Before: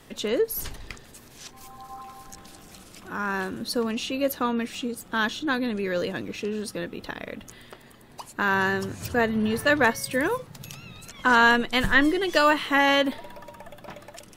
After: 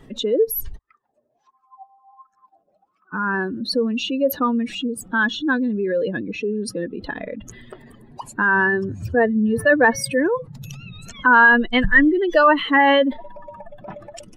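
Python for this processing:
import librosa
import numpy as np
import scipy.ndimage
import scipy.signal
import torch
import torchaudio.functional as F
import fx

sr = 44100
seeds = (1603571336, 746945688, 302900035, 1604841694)

y = fx.spec_expand(x, sr, power=2.0)
y = fx.wah_lfo(y, sr, hz=1.4, low_hz=570.0, high_hz=1300.0, q=16.0, at=(0.77, 3.12), fade=0.02)
y = F.gain(torch.from_numpy(y), 6.0).numpy()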